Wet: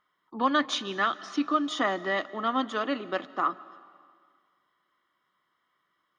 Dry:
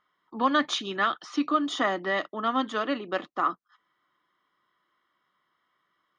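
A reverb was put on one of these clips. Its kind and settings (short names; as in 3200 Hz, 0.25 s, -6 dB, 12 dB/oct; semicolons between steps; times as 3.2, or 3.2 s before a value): digital reverb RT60 1.9 s, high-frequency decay 0.95×, pre-delay 0.115 s, DRR 18.5 dB; gain -1 dB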